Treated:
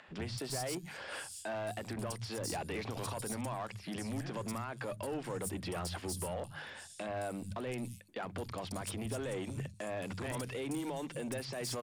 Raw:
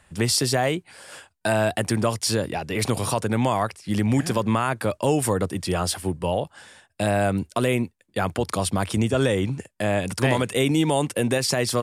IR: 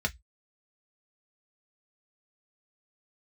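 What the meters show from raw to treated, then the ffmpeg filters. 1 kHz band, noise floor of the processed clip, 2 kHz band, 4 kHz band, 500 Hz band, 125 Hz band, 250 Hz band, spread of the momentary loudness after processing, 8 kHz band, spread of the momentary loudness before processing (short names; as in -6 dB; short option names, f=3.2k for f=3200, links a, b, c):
-16.0 dB, -52 dBFS, -15.5 dB, -16.0 dB, -16.0 dB, -16.5 dB, -16.5 dB, 4 LU, -14.0 dB, 7 LU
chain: -filter_complex "[0:a]acompressor=threshold=-28dB:ratio=6,bandreject=f=50:t=h:w=6,bandreject=f=100:t=h:w=6,bandreject=f=150:t=h:w=6,bandreject=f=200:t=h:w=6,alimiter=level_in=3dB:limit=-24dB:level=0:latency=1:release=50,volume=-3dB,asoftclip=type=tanh:threshold=-33dB,acrossover=split=170|4600[a][b][c];[a]adelay=80[d];[c]adelay=220[e];[d][b][e]amix=inputs=3:normalize=0,acompressor=mode=upward:threshold=-58dB:ratio=2.5,asoftclip=type=hard:threshold=-33dB,volume=1.5dB"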